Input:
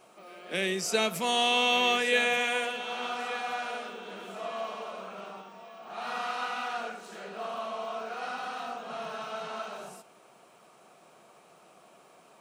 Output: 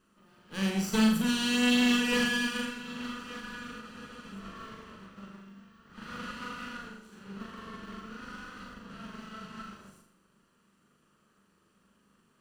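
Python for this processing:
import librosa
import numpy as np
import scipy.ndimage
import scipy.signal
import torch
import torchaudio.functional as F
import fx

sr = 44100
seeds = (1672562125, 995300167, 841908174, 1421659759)

p1 = fx.lower_of_two(x, sr, delay_ms=0.69)
p2 = fx.peak_eq(p1, sr, hz=200.0, db=12.5, octaves=0.81)
p3 = fx.room_flutter(p2, sr, wall_m=7.0, rt60_s=0.56)
p4 = 10.0 ** (-19.0 / 20.0) * (np.abs((p3 / 10.0 ** (-19.0 / 20.0) + 3.0) % 4.0 - 2.0) - 1.0)
p5 = p3 + (p4 * librosa.db_to_amplitude(-5.0))
p6 = fx.spec_freeze(p5, sr, seeds[0], at_s=3.83, hold_s=0.51)
p7 = fx.upward_expand(p6, sr, threshold_db=-38.0, expansion=1.5)
y = p7 * librosa.db_to_amplitude(-5.5)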